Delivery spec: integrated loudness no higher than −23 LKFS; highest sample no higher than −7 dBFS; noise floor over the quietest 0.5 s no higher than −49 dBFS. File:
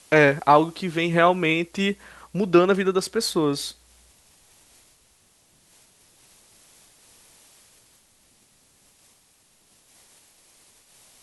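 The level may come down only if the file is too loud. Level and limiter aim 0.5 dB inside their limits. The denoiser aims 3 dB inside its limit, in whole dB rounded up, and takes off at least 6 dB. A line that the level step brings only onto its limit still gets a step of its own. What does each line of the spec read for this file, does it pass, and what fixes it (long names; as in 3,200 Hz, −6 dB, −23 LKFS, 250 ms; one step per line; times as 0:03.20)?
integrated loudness −21.0 LKFS: out of spec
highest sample −2.5 dBFS: out of spec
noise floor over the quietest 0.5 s −61 dBFS: in spec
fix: level −2.5 dB
brickwall limiter −7.5 dBFS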